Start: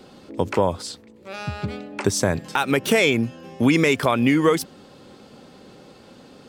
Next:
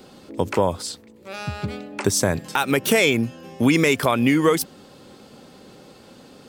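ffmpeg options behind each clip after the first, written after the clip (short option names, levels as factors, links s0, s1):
-af "highshelf=f=9000:g=9.5"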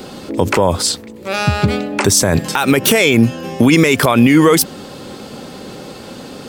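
-af "alimiter=level_in=5.96:limit=0.891:release=50:level=0:latency=1,volume=0.891"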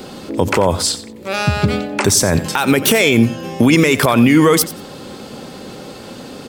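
-af "aecho=1:1:90|180:0.178|0.032,volume=0.891"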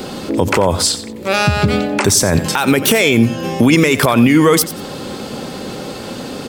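-af "alimiter=limit=0.376:level=0:latency=1:release=228,volume=2"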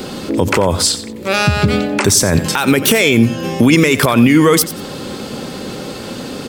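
-af "equalizer=f=760:t=o:w=0.88:g=-3,volume=1.12"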